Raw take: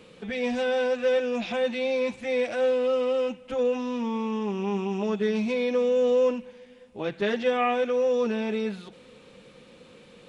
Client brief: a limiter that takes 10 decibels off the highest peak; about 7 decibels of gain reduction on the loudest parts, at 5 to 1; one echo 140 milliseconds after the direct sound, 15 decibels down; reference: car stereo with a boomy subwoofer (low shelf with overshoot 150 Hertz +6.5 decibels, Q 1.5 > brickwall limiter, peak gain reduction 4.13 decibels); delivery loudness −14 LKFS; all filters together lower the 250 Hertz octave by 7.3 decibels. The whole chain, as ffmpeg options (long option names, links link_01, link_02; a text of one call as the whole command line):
ffmpeg -i in.wav -af "equalizer=frequency=250:width_type=o:gain=-6.5,acompressor=threshold=-29dB:ratio=5,alimiter=level_in=7dB:limit=-24dB:level=0:latency=1,volume=-7dB,lowshelf=frequency=150:width_type=q:width=1.5:gain=6.5,aecho=1:1:140:0.178,volume=27dB,alimiter=limit=-6.5dB:level=0:latency=1" out.wav